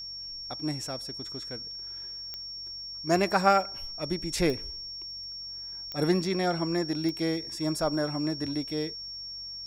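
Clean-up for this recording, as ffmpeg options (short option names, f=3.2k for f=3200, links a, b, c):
-af "adeclick=t=4,bandreject=f=46.8:t=h:w=4,bandreject=f=93.6:t=h:w=4,bandreject=f=140.4:t=h:w=4,bandreject=f=187.2:t=h:w=4,bandreject=f=5.5k:w=30"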